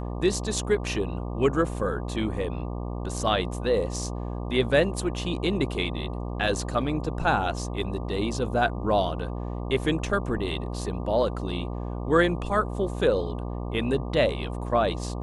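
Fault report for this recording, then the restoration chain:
buzz 60 Hz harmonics 20 -32 dBFS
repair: de-hum 60 Hz, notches 20

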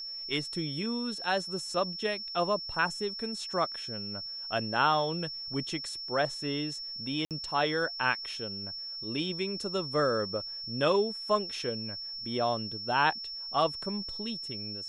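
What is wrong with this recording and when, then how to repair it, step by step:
whine 5.4 kHz -37 dBFS
7.25–7.31 s: dropout 58 ms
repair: band-stop 5.4 kHz, Q 30; interpolate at 7.25 s, 58 ms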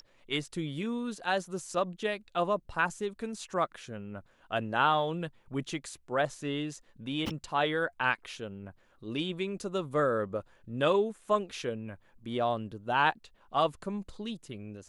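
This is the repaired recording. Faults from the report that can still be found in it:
nothing left

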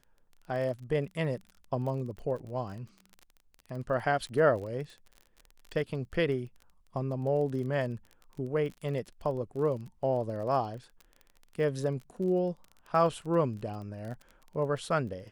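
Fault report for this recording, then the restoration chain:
crackle 27 per s -39 dBFS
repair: de-click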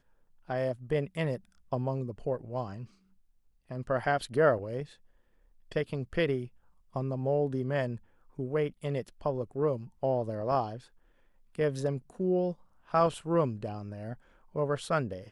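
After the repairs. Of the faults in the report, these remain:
nothing left

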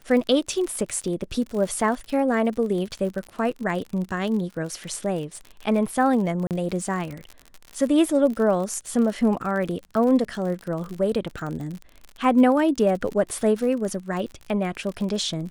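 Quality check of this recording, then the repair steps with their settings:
crackle 54 per s -30 dBFS
6.47–6.51 s: dropout 38 ms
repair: de-click; interpolate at 6.47 s, 38 ms

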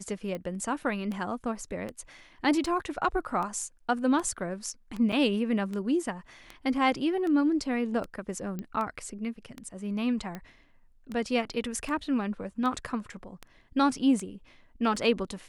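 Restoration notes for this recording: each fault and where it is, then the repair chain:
tick 78 rpm -23 dBFS
5.12–5.13 s: dropout 5.8 ms
8.59 s: pop -23 dBFS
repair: de-click; interpolate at 5.12 s, 5.8 ms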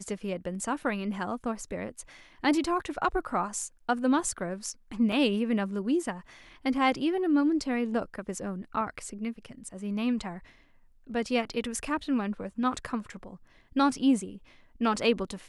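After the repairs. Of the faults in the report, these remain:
nothing left

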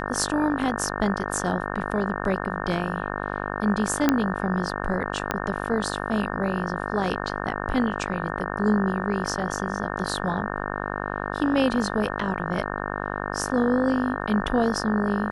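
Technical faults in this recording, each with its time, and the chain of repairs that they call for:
buzz 50 Hz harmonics 36 -30 dBFS
4.09 s: pop -5 dBFS
5.31 s: pop -8 dBFS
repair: de-click; de-hum 50 Hz, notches 36

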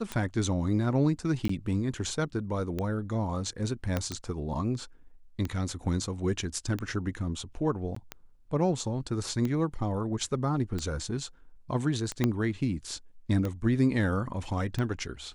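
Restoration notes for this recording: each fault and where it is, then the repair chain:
tick 45 rpm -19 dBFS
1.48–1.49 s: dropout 14 ms
3.97 s: pop -14 dBFS
7.95–7.96 s: dropout 14 ms
12.24 s: pop -12 dBFS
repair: de-click; interpolate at 1.48 s, 14 ms; interpolate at 7.95 s, 14 ms

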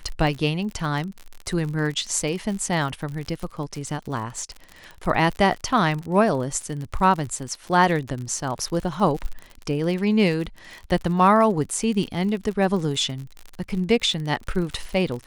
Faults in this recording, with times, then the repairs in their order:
crackle 48 per s -29 dBFS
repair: de-click

